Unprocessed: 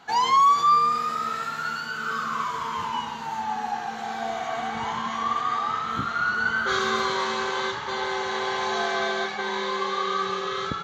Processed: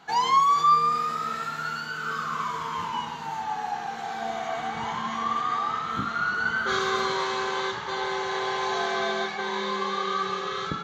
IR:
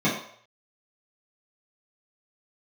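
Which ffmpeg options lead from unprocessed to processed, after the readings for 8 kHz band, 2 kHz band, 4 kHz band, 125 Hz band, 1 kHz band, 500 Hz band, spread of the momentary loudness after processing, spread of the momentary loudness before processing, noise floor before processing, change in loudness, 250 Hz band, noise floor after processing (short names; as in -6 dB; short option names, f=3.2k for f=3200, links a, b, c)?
n/a, -2.0 dB, -1.5 dB, +0.5 dB, -1.5 dB, -1.0 dB, 11 LU, 10 LU, -33 dBFS, -1.5 dB, -1.0 dB, -35 dBFS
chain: -filter_complex "[0:a]asplit=2[a][b];[1:a]atrim=start_sample=2205[c];[b][c]afir=irnorm=-1:irlink=0,volume=-27.5dB[d];[a][d]amix=inputs=2:normalize=0,volume=-2dB"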